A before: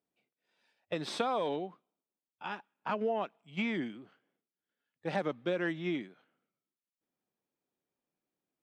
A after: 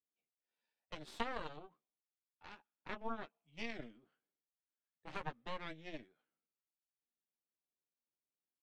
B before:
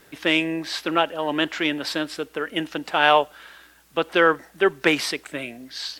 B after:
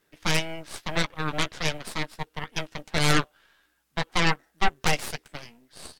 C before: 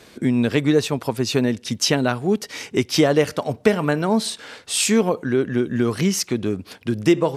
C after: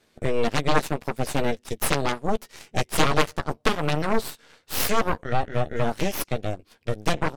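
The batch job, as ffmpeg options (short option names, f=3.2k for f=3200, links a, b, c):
-filter_complex "[0:a]asplit=2[a][b];[b]adelay=13,volume=-6dB[c];[a][c]amix=inputs=2:normalize=0,aeval=exprs='0.944*(cos(1*acos(clip(val(0)/0.944,-1,1)))-cos(1*PI/2))+0.376*(cos(3*acos(clip(val(0)/0.944,-1,1)))-cos(3*PI/2))+0.188*(cos(8*acos(clip(val(0)/0.944,-1,1)))-cos(8*PI/2))':c=same,volume=-3.5dB"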